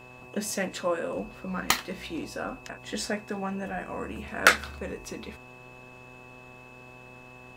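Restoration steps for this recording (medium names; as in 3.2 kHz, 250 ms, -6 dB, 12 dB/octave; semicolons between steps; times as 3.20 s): de-hum 125.5 Hz, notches 9; band-stop 2.6 kHz, Q 30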